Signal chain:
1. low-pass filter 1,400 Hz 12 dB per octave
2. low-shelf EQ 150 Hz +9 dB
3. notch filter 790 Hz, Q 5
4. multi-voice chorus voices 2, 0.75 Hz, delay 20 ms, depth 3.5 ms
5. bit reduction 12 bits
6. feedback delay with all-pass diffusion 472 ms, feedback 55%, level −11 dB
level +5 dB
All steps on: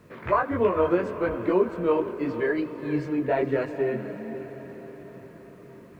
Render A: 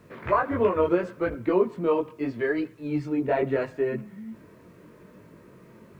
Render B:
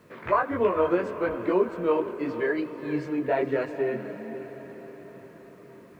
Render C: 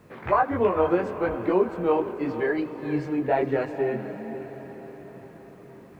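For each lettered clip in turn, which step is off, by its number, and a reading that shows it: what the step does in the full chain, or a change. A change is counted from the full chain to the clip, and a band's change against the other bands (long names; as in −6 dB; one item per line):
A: 6, echo-to-direct ratio −9.5 dB to none audible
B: 2, 125 Hz band −4.5 dB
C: 3, 1 kHz band +2.5 dB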